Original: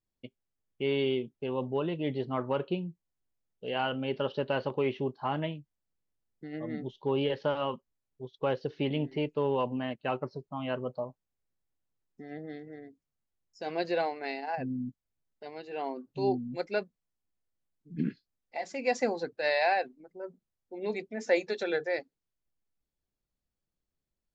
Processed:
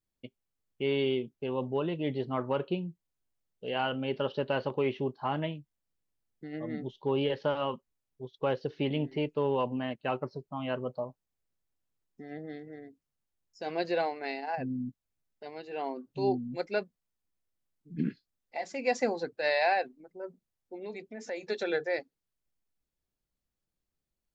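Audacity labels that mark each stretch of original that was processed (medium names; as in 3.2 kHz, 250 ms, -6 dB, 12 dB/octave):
20.760000	21.430000	compression 2:1, threshold -42 dBFS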